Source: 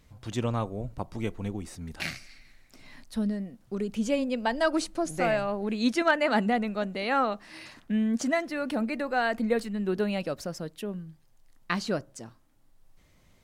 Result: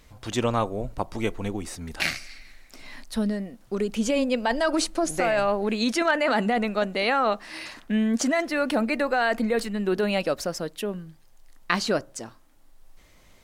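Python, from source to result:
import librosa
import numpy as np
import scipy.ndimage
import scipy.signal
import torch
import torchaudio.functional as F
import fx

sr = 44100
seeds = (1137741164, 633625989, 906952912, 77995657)

p1 = fx.peak_eq(x, sr, hz=130.0, db=-8.5, octaves=1.9)
p2 = fx.over_compress(p1, sr, threshold_db=-29.0, ratio=-0.5)
y = p1 + (p2 * librosa.db_to_amplitude(2.0))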